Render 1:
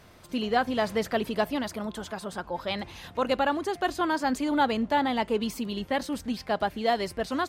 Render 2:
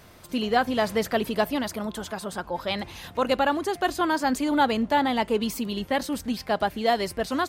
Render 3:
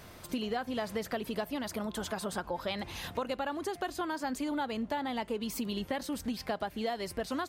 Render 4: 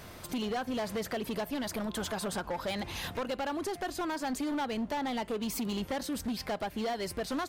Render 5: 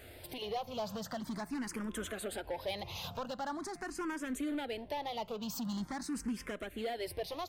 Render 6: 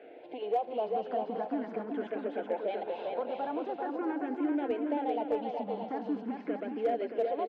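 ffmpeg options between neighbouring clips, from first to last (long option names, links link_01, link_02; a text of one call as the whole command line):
ffmpeg -i in.wav -af "highshelf=frequency=10000:gain=8,volume=2.5dB" out.wav
ffmpeg -i in.wav -af "acompressor=threshold=-31dB:ratio=10" out.wav
ffmpeg -i in.wav -af "asoftclip=type=hard:threshold=-32.5dB,volume=3dB" out.wav
ffmpeg -i in.wav -filter_complex "[0:a]asplit=2[link_01][link_02];[link_02]afreqshift=0.44[link_03];[link_01][link_03]amix=inputs=2:normalize=1,volume=-2dB" out.wav
ffmpeg -i in.wav -af "highpass=frequency=240:width=0.5412,highpass=frequency=240:width=1.3066,equalizer=frequency=300:width_type=q:width=4:gain=6,equalizer=frequency=470:width_type=q:width=4:gain=9,equalizer=frequency=730:width_type=q:width=4:gain=8,equalizer=frequency=1200:width_type=q:width=4:gain=-7,equalizer=frequency=1900:width_type=q:width=4:gain=-6,lowpass=frequency=2400:width=0.5412,lowpass=frequency=2400:width=1.3066,aecho=1:1:390|624|764.4|848.6|899.2:0.631|0.398|0.251|0.158|0.1,asoftclip=type=hard:threshold=-22dB" out.wav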